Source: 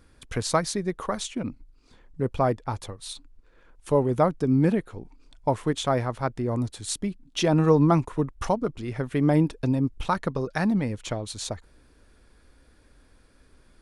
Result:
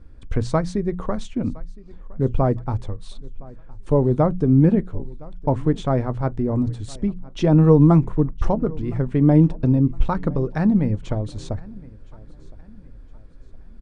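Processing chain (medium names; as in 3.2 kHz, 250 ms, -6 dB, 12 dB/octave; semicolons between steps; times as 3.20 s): steep low-pass 9.5 kHz 72 dB/octave; tilt EQ -3.5 dB/octave; hum notches 60/120/180 Hz; feedback delay 1014 ms, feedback 38%, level -23 dB; on a send at -17.5 dB: reverberation RT60 0.15 s, pre-delay 9 ms; on the sum: trim -1 dB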